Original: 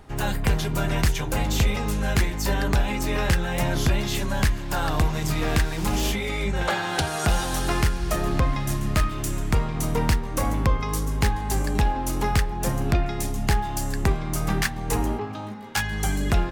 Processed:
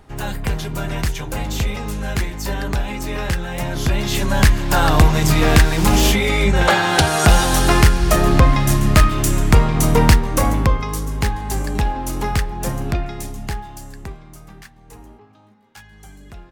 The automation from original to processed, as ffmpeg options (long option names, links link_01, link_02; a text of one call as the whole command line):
ffmpeg -i in.wav -af "volume=10dB,afade=type=in:start_time=3.74:duration=0.88:silence=0.316228,afade=type=out:start_time=10.11:duration=0.82:silence=0.398107,afade=type=out:start_time=12.66:duration=1.11:silence=0.316228,afade=type=out:start_time=13.77:duration=0.74:silence=0.334965" out.wav